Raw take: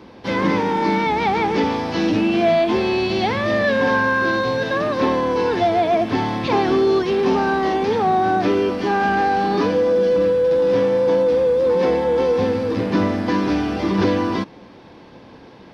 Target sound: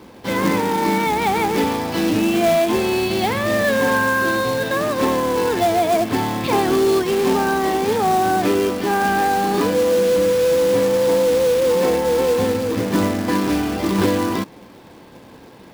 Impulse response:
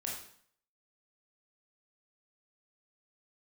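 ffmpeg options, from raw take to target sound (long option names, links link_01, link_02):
-af "acrusher=bits=3:mode=log:mix=0:aa=0.000001"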